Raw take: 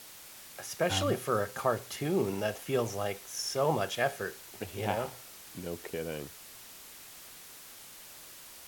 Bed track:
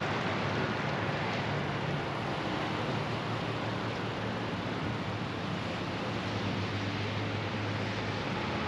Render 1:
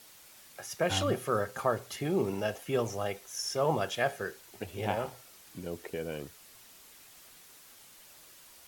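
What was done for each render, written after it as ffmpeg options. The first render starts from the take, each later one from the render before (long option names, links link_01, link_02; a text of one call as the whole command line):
ffmpeg -i in.wav -af "afftdn=noise_reduction=6:noise_floor=-50" out.wav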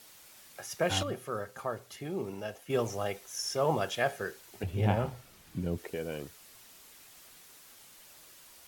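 ffmpeg -i in.wav -filter_complex "[0:a]asettb=1/sr,asplit=3[link_01][link_02][link_03];[link_01]atrim=end=4.634[link_04];[link_02]atrim=start=4.63:end=5.78,asetpts=PTS-STARTPTS,afade=type=in:duration=0.004:curve=qsin,afade=type=out:start_time=1.146:duration=0.004:curve=qsin,bass=frequency=250:gain=12,treble=frequency=4000:gain=-5[link_05];[link_03]atrim=start=5.776[link_06];[link_04][link_05]acrossfade=duration=0.004:curve1=hsin:curve2=qsin[link_07];[link_07][link_06]acrossfade=duration=0.004:curve1=qsin:curve2=hsin,asplit=3[link_08][link_09][link_10];[link_08]atrim=end=1.032[link_11];[link_09]atrim=start=1.028:end=2.702,asetpts=PTS-STARTPTS,volume=-6.5dB[link_12];[link_10]atrim=start=2.698[link_13];[link_11][link_12]acrossfade=duration=0.004:curve1=hsin:curve2=hsin[link_14];[link_14][link_13]acrossfade=duration=0.004:curve1=hsin:curve2=hsin" out.wav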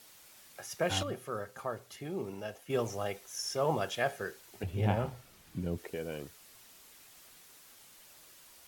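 ffmpeg -i in.wav -af "volume=-2dB" out.wav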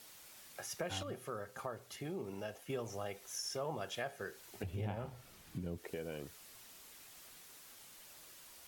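ffmpeg -i in.wav -af "acompressor=threshold=-40dB:ratio=3" out.wav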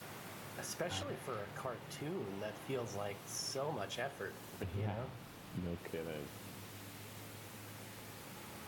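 ffmpeg -i in.wav -i bed.wav -filter_complex "[1:a]volume=-18.5dB[link_01];[0:a][link_01]amix=inputs=2:normalize=0" out.wav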